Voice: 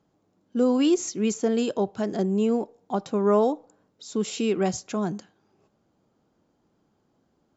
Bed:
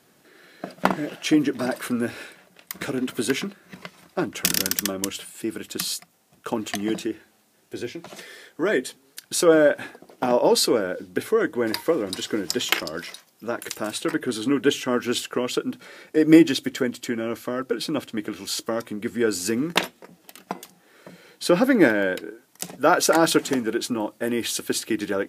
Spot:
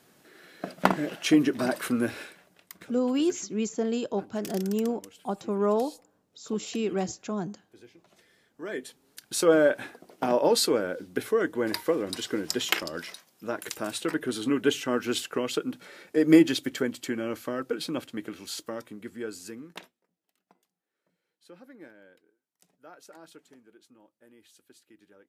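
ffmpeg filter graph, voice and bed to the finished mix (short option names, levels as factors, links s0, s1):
-filter_complex "[0:a]adelay=2350,volume=0.596[s0];[1:a]volume=5.96,afade=t=out:st=2.08:d=0.8:silence=0.105925,afade=t=in:st=8.45:d=1.07:silence=0.141254,afade=t=out:st=17.48:d=2.52:silence=0.0398107[s1];[s0][s1]amix=inputs=2:normalize=0"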